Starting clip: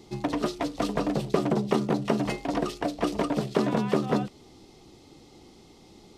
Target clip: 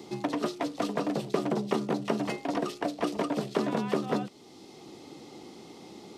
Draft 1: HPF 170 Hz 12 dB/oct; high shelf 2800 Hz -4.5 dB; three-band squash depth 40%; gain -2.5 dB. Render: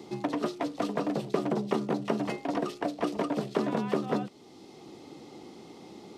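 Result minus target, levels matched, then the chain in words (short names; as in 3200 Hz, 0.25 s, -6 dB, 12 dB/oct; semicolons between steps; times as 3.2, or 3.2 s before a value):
4000 Hz band -2.5 dB
HPF 170 Hz 12 dB/oct; three-band squash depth 40%; gain -2.5 dB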